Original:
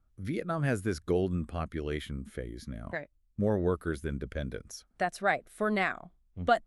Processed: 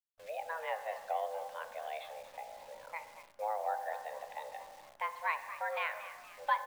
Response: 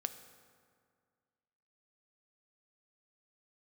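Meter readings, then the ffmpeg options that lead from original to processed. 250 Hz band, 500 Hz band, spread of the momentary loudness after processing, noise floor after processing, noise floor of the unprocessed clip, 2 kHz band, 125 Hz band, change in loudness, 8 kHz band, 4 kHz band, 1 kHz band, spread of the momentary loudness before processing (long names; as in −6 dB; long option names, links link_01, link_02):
below −40 dB, −9.0 dB, 12 LU, −60 dBFS, −69 dBFS, −5.5 dB, below −40 dB, −7.0 dB, −8.5 dB, −6.5 dB, −1.0 dB, 12 LU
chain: -filter_complex "[0:a]asplit=6[link_01][link_02][link_03][link_04][link_05][link_06];[link_02]adelay=233,afreqshift=94,volume=-13.5dB[link_07];[link_03]adelay=466,afreqshift=188,volume=-19.9dB[link_08];[link_04]adelay=699,afreqshift=282,volume=-26.3dB[link_09];[link_05]adelay=932,afreqshift=376,volume=-32.6dB[link_10];[link_06]adelay=1165,afreqshift=470,volume=-39dB[link_11];[link_01][link_07][link_08][link_09][link_10][link_11]amix=inputs=6:normalize=0[link_12];[1:a]atrim=start_sample=2205,afade=type=out:start_time=0.39:duration=0.01,atrim=end_sample=17640[link_13];[link_12][link_13]afir=irnorm=-1:irlink=0,highpass=frequency=200:width_type=q:width=0.5412,highpass=frequency=200:width_type=q:width=1.307,lowpass=frequency=3500:width_type=q:width=0.5176,lowpass=frequency=3500:width_type=q:width=0.7071,lowpass=frequency=3500:width_type=q:width=1.932,afreqshift=320,acrusher=bits=9:dc=4:mix=0:aa=0.000001,volume=-6dB"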